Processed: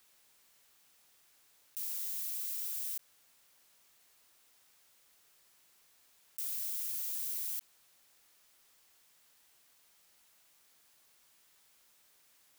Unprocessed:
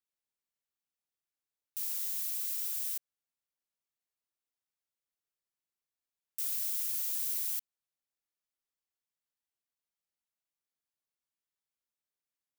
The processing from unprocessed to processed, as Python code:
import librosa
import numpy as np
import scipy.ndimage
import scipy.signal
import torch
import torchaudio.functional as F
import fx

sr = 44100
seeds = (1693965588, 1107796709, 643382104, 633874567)

y = fx.low_shelf(x, sr, hz=460.0, db=-5.5)
y = fx.env_flatten(y, sr, amount_pct=50)
y = y * librosa.db_to_amplitude(-4.0)